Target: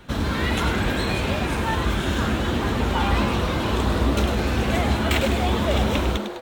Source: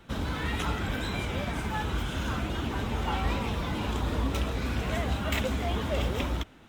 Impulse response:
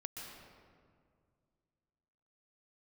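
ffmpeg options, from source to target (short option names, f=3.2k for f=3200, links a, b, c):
-filter_complex "[0:a]asplit=8[a][b][c][d][e][f][g][h];[b]adelay=106,afreqshift=140,volume=-8dB[i];[c]adelay=212,afreqshift=280,volume=-12.9dB[j];[d]adelay=318,afreqshift=420,volume=-17.8dB[k];[e]adelay=424,afreqshift=560,volume=-22.6dB[l];[f]adelay=530,afreqshift=700,volume=-27.5dB[m];[g]adelay=636,afreqshift=840,volume=-32.4dB[n];[h]adelay=742,afreqshift=980,volume=-37.3dB[o];[a][i][j][k][l][m][n][o]amix=inputs=8:normalize=0,asetrate=45938,aresample=44100,volume=7dB"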